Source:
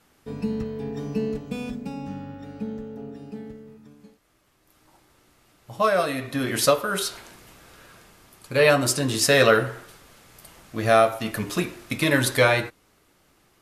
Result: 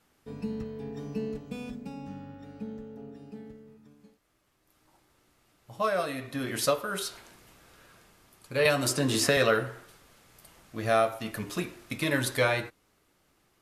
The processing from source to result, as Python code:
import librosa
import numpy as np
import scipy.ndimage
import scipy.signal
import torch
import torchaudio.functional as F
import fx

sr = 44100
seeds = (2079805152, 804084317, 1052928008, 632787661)

y = fx.band_squash(x, sr, depth_pct=100, at=(8.65, 9.37))
y = y * 10.0 ** (-7.0 / 20.0)